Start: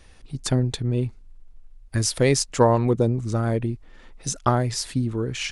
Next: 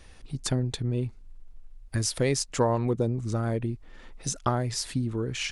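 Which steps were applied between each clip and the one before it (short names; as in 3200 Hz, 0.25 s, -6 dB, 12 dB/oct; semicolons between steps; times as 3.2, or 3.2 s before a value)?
compressor 1.5:1, threshold -32 dBFS, peak gain reduction 7.5 dB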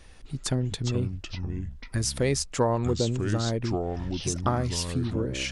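echoes that change speed 0.256 s, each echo -5 st, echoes 2, each echo -6 dB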